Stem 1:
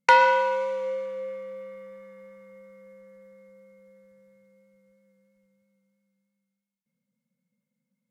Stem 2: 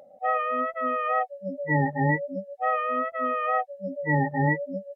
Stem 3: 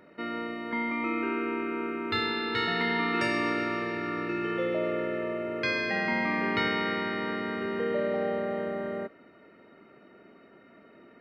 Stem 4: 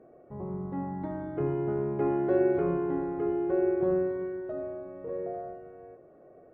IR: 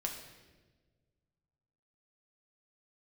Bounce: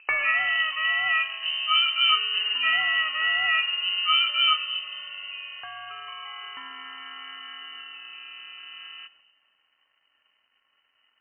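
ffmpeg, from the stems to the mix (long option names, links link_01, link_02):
-filter_complex "[0:a]volume=-9dB,asplit=2[link_01][link_02];[link_02]volume=-8dB[link_03];[1:a]volume=0dB,asplit=2[link_04][link_05];[link_05]volume=-6dB[link_06];[2:a]acompressor=threshold=-33dB:ratio=6,aeval=exprs='sgn(val(0))*max(abs(val(0))-0.00126,0)':channel_layout=same,volume=-2.5dB,asplit=2[link_07][link_08];[link_08]volume=-11dB[link_09];[3:a]asoftclip=type=hard:threshold=-20dB,adelay=50,volume=-0.5dB,asplit=2[link_10][link_11];[link_11]volume=-6dB[link_12];[link_07][link_10]amix=inputs=2:normalize=0,agate=range=-10dB:threshold=-57dB:ratio=16:detection=peak,acompressor=threshold=-37dB:ratio=1.5,volume=0dB[link_13];[4:a]atrim=start_sample=2205[link_14];[link_03][link_06][link_09][link_12]amix=inputs=4:normalize=0[link_15];[link_15][link_14]afir=irnorm=-1:irlink=0[link_16];[link_01][link_04][link_13][link_16]amix=inputs=4:normalize=0,highpass=82,equalizer=frequency=520:width_type=o:width=1.1:gain=-8,lowpass=frequency=2700:width_type=q:width=0.5098,lowpass=frequency=2700:width_type=q:width=0.6013,lowpass=frequency=2700:width_type=q:width=0.9,lowpass=frequency=2700:width_type=q:width=2.563,afreqshift=-3200"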